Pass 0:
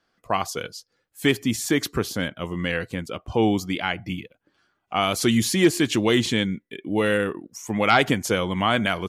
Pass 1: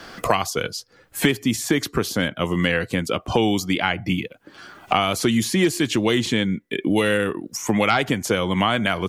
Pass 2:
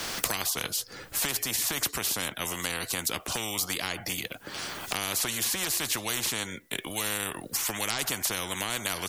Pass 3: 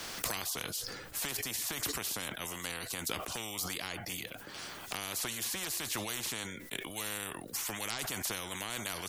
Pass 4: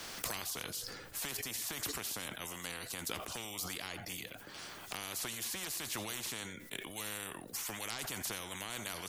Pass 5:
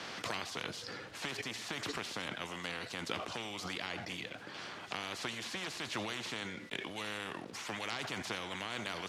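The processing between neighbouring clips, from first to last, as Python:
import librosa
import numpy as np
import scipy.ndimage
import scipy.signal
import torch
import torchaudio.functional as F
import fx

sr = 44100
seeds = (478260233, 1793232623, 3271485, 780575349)

y1 = fx.band_squash(x, sr, depth_pct=100)
y1 = y1 * librosa.db_to_amplitude(1.0)
y2 = fx.high_shelf(y1, sr, hz=5000.0, db=10.0)
y2 = fx.spectral_comp(y2, sr, ratio=4.0)
y2 = y2 * librosa.db_to_amplitude(-1.0)
y3 = fx.sustainer(y2, sr, db_per_s=41.0)
y3 = y3 * librosa.db_to_amplitude(-8.0)
y4 = y3 + 10.0 ** (-16.0 / 20.0) * np.pad(y3, (int(85 * sr / 1000.0), 0))[:len(y3)]
y4 = y4 * librosa.db_to_amplitude(-3.5)
y5 = fx.quant_companded(y4, sr, bits=4)
y5 = fx.bandpass_edges(y5, sr, low_hz=110.0, high_hz=3900.0)
y5 = y5 * librosa.db_to_amplitude(3.5)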